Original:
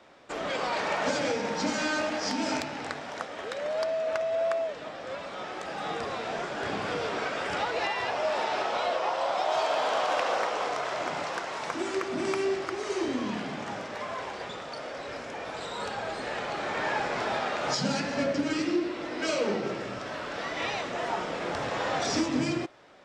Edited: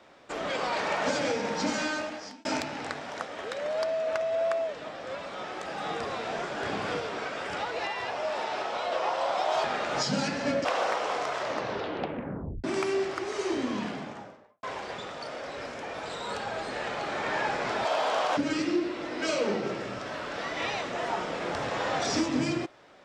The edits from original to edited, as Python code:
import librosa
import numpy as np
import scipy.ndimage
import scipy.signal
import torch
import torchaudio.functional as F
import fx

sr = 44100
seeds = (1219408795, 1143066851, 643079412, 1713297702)

y = fx.studio_fade_out(x, sr, start_s=13.28, length_s=0.86)
y = fx.edit(y, sr, fx.fade_out_span(start_s=1.75, length_s=0.7),
    fx.clip_gain(start_s=7.0, length_s=1.92, db=-3.0),
    fx.swap(start_s=9.64, length_s=0.52, other_s=17.36, other_length_s=1.01),
    fx.tape_stop(start_s=10.9, length_s=1.25), tone=tone)